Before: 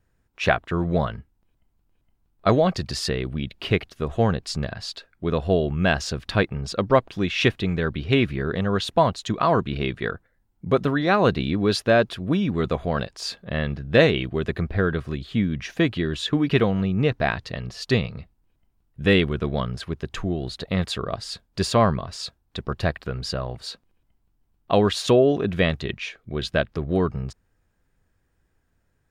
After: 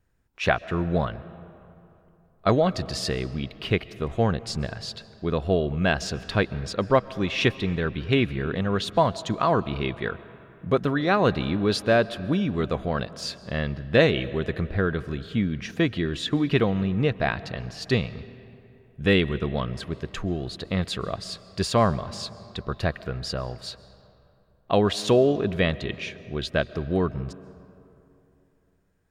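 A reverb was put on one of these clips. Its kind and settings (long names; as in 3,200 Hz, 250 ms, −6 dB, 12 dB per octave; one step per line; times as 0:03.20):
comb and all-pass reverb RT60 3 s, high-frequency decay 0.55×, pre-delay 95 ms, DRR 17 dB
level −2 dB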